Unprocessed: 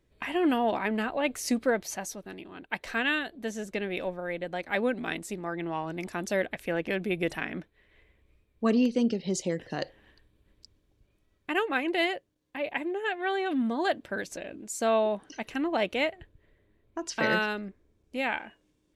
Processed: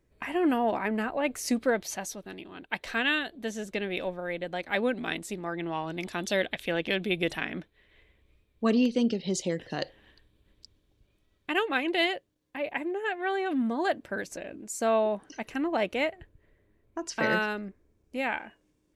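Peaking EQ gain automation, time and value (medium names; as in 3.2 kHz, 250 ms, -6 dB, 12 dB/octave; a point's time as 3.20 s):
peaking EQ 3.5 kHz 0.68 oct
1.16 s -7 dB
1.74 s +4 dB
5.60 s +4 dB
6.31 s +13 dB
6.89 s +13 dB
7.54 s +5 dB
12.06 s +5 dB
12.73 s -4.5 dB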